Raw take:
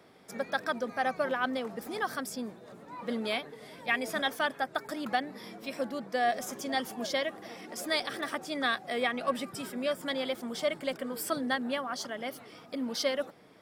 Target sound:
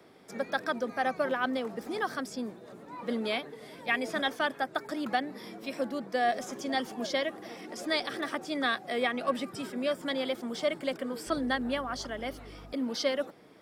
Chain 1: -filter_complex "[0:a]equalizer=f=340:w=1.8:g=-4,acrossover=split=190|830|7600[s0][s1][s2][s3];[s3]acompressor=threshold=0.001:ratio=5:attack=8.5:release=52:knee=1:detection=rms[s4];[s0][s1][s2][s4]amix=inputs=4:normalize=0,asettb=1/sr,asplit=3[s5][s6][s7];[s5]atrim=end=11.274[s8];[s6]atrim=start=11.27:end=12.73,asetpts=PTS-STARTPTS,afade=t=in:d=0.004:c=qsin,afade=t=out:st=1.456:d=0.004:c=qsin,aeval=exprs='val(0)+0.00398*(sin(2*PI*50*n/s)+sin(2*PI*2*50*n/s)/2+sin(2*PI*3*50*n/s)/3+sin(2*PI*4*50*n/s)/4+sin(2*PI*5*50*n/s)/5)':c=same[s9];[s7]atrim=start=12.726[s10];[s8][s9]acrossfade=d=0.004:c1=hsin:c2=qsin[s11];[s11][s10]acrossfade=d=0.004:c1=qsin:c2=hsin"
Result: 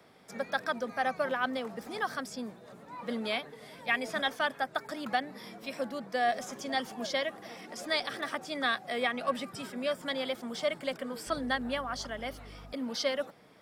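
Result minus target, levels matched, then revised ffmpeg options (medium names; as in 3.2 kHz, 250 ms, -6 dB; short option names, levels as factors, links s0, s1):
250 Hz band -3.0 dB
-filter_complex "[0:a]equalizer=f=340:w=1.8:g=4,acrossover=split=190|830|7600[s0][s1][s2][s3];[s3]acompressor=threshold=0.001:ratio=5:attack=8.5:release=52:knee=1:detection=rms[s4];[s0][s1][s2][s4]amix=inputs=4:normalize=0,asettb=1/sr,asplit=3[s5][s6][s7];[s5]atrim=end=11.274[s8];[s6]atrim=start=11.27:end=12.73,asetpts=PTS-STARTPTS,afade=t=in:d=0.004:c=qsin,afade=t=out:st=1.456:d=0.004:c=qsin,aeval=exprs='val(0)+0.00398*(sin(2*PI*50*n/s)+sin(2*PI*2*50*n/s)/2+sin(2*PI*3*50*n/s)/3+sin(2*PI*4*50*n/s)/4+sin(2*PI*5*50*n/s)/5)':c=same[s9];[s7]atrim=start=12.726[s10];[s8][s9]acrossfade=d=0.004:c1=hsin:c2=qsin[s11];[s11][s10]acrossfade=d=0.004:c1=qsin:c2=hsin"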